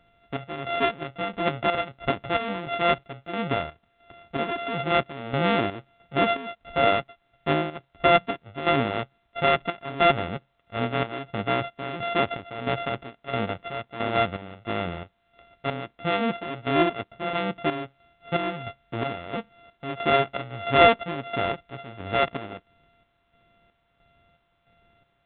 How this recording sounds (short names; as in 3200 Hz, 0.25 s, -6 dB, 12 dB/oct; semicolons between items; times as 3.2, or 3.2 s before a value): a buzz of ramps at a fixed pitch in blocks of 64 samples; chopped level 1.5 Hz, depth 65%, duty 55%; A-law